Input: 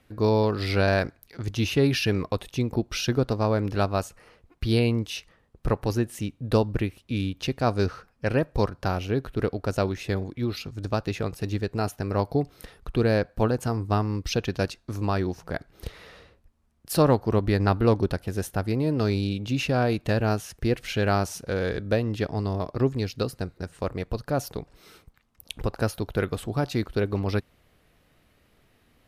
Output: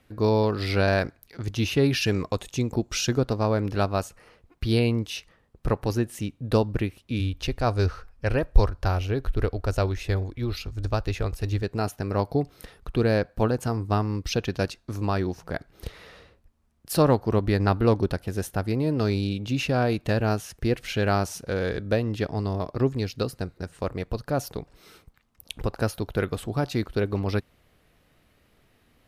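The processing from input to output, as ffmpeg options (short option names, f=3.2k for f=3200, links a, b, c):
-filter_complex "[0:a]asettb=1/sr,asplit=3[a][b][c];[a]atrim=end=2.014[d];[b]atrim=start=2.01:end=3.19,asetpts=PTS-STARTPTS,afade=t=in:d=0.004:c=qsin,afade=t=out:st=1.176:d=0.004:c=qsin,equalizer=f=7.1k:t=o:w=0.43:g=12[e];[c]atrim=start=3.186[f];[d][e]acrossfade=d=0.004:c1=hsin:c2=qsin[g];[g][f]acrossfade=d=0.004:c1=qsin:c2=hsin,asplit=3[h][i][j];[h]afade=t=out:st=7.19:d=0.02[k];[i]asubboost=boost=11:cutoff=51,afade=t=in:st=7.19:d=0.02,afade=t=out:st=11.62:d=0.02[l];[j]afade=t=in:st=11.62:d=0.02[m];[k][l][m]amix=inputs=3:normalize=0"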